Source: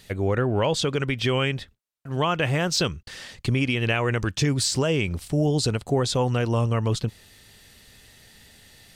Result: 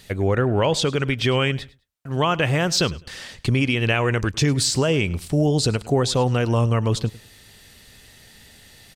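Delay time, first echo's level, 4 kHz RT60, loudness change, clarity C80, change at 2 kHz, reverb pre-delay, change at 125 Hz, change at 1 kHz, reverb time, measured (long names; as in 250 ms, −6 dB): 103 ms, −20.5 dB, no reverb audible, +3.0 dB, no reverb audible, +3.0 dB, no reverb audible, +3.0 dB, +3.0 dB, no reverb audible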